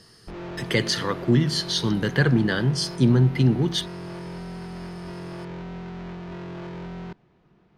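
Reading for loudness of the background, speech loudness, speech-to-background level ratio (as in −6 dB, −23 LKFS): −36.5 LKFS, −22.0 LKFS, 14.5 dB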